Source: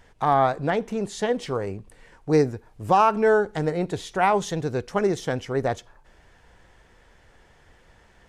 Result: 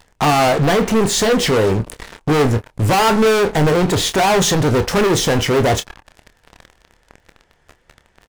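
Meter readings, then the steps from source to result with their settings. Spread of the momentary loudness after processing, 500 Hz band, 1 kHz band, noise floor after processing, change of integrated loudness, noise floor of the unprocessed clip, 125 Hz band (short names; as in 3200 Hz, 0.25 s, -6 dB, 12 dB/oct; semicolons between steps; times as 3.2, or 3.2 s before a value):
5 LU, +7.5 dB, +5.0 dB, -59 dBFS, +8.5 dB, -57 dBFS, +12.0 dB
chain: sample leveller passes 5; in parallel at 0 dB: limiter -16.5 dBFS, peak gain reduction 8.5 dB; on the sum: soft clip -12.5 dBFS, distortion -15 dB; doubler 27 ms -10 dB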